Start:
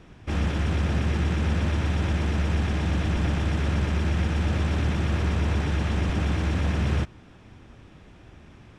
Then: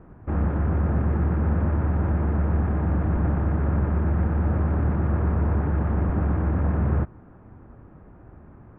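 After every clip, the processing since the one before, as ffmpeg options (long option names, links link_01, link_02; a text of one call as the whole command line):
ffmpeg -i in.wav -af "lowpass=frequency=1400:width=0.5412,lowpass=frequency=1400:width=1.3066,volume=2dB" out.wav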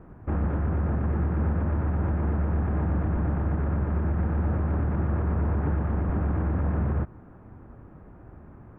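ffmpeg -i in.wav -af "alimiter=limit=-18.5dB:level=0:latency=1:release=78" out.wav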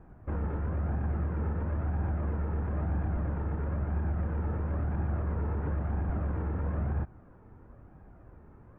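ffmpeg -i in.wav -af "flanger=delay=1.2:depth=1.1:regen=59:speed=1:shape=sinusoidal,volume=-1.5dB" out.wav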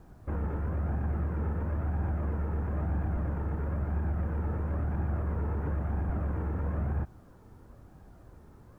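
ffmpeg -i in.wav -af "acrusher=bits=11:mix=0:aa=0.000001" out.wav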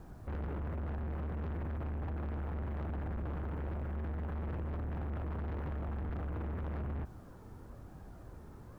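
ffmpeg -i in.wav -af "asoftclip=type=tanh:threshold=-38.5dB,volume=2.5dB" out.wav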